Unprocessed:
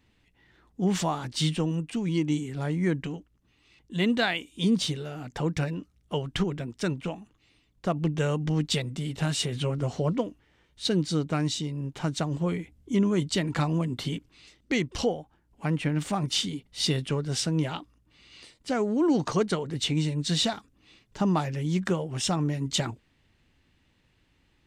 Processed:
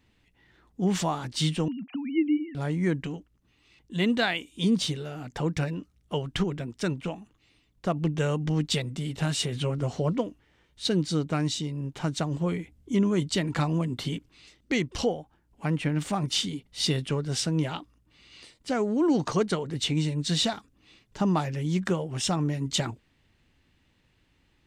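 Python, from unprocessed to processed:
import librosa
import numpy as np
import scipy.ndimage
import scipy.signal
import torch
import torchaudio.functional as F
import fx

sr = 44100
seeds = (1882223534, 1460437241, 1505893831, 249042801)

y = fx.sine_speech(x, sr, at=(1.68, 2.55))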